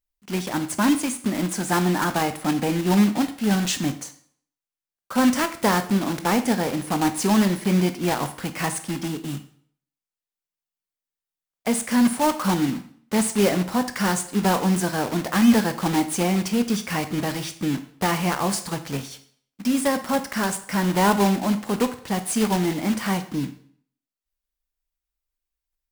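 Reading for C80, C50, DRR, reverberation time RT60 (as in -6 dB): 16.0 dB, 13.0 dB, 9.5 dB, 0.55 s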